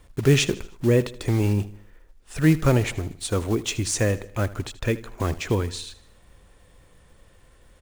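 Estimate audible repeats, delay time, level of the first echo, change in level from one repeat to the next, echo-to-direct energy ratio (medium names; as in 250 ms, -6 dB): 3, 78 ms, -18.0 dB, -6.5 dB, -17.0 dB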